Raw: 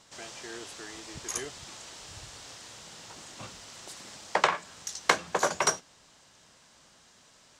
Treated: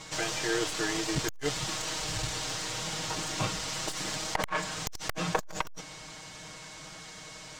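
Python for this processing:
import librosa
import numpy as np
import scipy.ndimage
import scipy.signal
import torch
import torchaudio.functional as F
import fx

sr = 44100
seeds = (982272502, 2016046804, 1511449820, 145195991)

p1 = fx.tracing_dist(x, sr, depth_ms=0.24)
p2 = fx.over_compress(p1, sr, threshold_db=-35.0, ratio=-0.5)
p3 = p1 + (p2 * librosa.db_to_amplitude(2.5))
p4 = fx.high_shelf(p3, sr, hz=9300.0, db=-3.0)
p5 = p4 + 0.96 * np.pad(p4, (int(6.4 * sr / 1000.0), 0))[:len(p4)]
p6 = p5 + 10.0 ** (-53.0 / 20.0) * np.sin(2.0 * np.pi * 2200.0 * np.arange(len(p5)) / sr)
p7 = fx.low_shelf(p6, sr, hz=120.0, db=6.0)
y = fx.transformer_sat(p7, sr, knee_hz=650.0)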